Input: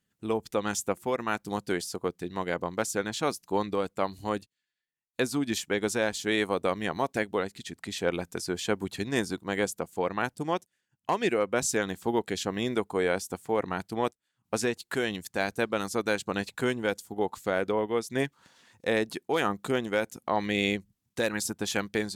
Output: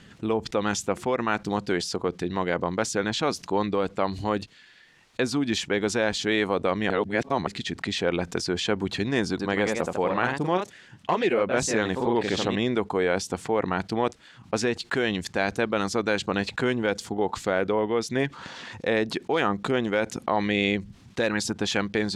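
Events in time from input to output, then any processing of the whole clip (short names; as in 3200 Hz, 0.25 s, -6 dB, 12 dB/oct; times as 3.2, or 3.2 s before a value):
6.9–7.47 reverse
9.29–12.64 echoes that change speed 0.103 s, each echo +1 st, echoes 2, each echo -6 dB
whole clip: LPF 4500 Hz 12 dB/oct; fast leveller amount 50%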